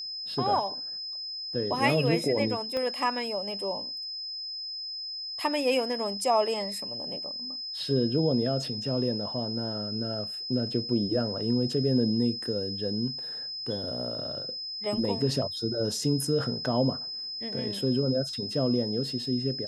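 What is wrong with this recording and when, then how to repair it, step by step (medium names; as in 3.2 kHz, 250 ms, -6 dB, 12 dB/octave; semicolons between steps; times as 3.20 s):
whine 5.1 kHz -34 dBFS
2.77 s: pop -19 dBFS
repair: de-click; band-stop 5.1 kHz, Q 30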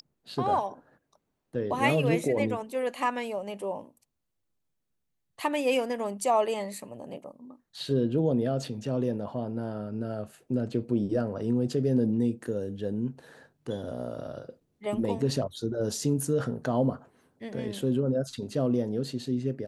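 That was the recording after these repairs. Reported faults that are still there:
2.77 s: pop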